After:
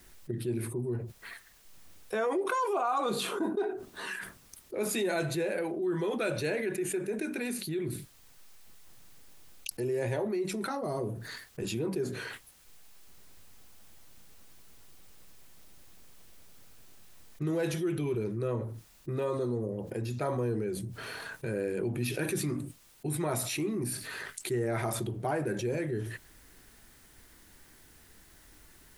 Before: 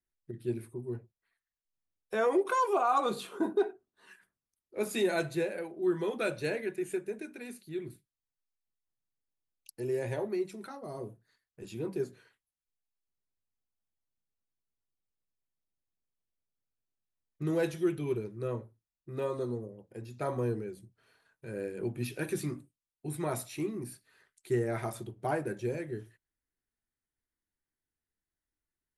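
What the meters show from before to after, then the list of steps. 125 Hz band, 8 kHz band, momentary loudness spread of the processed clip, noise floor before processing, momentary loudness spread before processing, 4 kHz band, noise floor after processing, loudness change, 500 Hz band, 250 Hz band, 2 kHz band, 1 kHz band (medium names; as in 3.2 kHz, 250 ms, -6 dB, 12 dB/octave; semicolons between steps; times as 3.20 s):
+4.5 dB, +8.5 dB, 11 LU, under -85 dBFS, 15 LU, +6.0 dB, -58 dBFS, +1.0 dB, +1.0 dB, +2.0 dB, +3.0 dB, -1.0 dB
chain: level flattener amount 70%; trim -5 dB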